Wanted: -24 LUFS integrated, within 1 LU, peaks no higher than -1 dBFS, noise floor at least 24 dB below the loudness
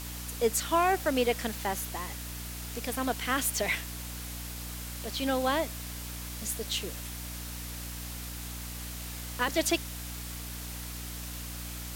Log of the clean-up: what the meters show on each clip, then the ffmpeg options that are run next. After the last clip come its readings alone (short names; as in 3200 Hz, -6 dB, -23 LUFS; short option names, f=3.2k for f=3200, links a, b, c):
hum 60 Hz; harmonics up to 300 Hz; hum level -39 dBFS; noise floor -40 dBFS; noise floor target -57 dBFS; loudness -32.5 LUFS; peak -13.5 dBFS; loudness target -24.0 LUFS
-> -af "bandreject=f=60:t=h:w=6,bandreject=f=120:t=h:w=6,bandreject=f=180:t=h:w=6,bandreject=f=240:t=h:w=6,bandreject=f=300:t=h:w=6"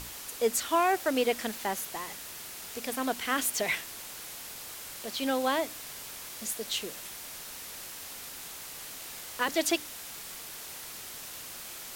hum none; noise floor -43 dBFS; noise floor target -57 dBFS
-> -af "afftdn=nr=14:nf=-43"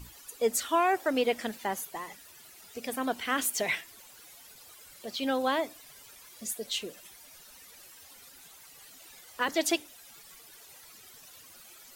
noise floor -53 dBFS; noise floor target -55 dBFS
-> -af "afftdn=nr=6:nf=-53"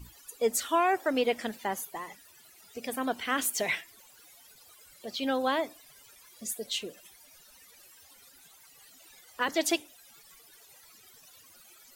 noise floor -57 dBFS; loudness -30.5 LUFS; peak -15.0 dBFS; loudness target -24.0 LUFS
-> -af "volume=6.5dB"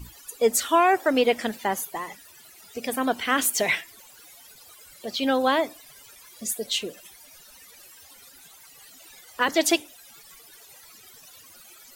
loudness -24.0 LUFS; peak -8.5 dBFS; noise floor -51 dBFS